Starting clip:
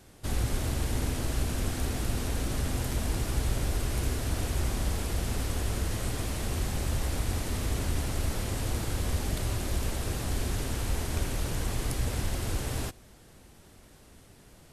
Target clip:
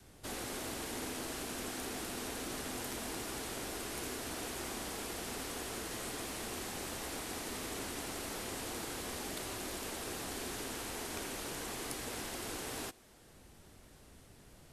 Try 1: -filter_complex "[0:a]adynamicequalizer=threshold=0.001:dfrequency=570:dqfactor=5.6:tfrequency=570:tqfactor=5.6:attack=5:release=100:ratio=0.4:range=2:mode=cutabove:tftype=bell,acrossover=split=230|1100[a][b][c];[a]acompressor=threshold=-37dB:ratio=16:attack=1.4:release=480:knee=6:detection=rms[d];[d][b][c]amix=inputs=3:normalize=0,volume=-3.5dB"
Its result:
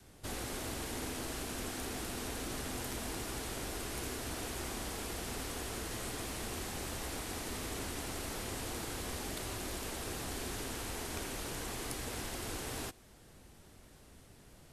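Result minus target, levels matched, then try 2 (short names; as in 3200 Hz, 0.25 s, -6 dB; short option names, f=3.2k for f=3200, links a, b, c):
compressor: peak gain reduction -8 dB
-filter_complex "[0:a]adynamicequalizer=threshold=0.001:dfrequency=570:dqfactor=5.6:tfrequency=570:tqfactor=5.6:attack=5:release=100:ratio=0.4:range=2:mode=cutabove:tftype=bell,acrossover=split=230|1100[a][b][c];[a]acompressor=threshold=-45.5dB:ratio=16:attack=1.4:release=480:knee=6:detection=rms[d];[d][b][c]amix=inputs=3:normalize=0,volume=-3.5dB"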